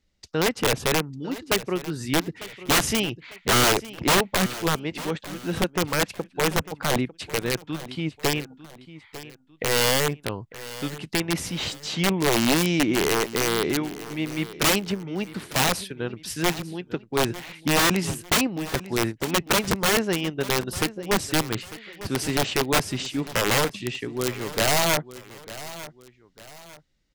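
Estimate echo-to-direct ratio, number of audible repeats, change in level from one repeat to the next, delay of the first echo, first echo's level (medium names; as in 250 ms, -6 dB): -15.5 dB, 2, -8.5 dB, 899 ms, -16.0 dB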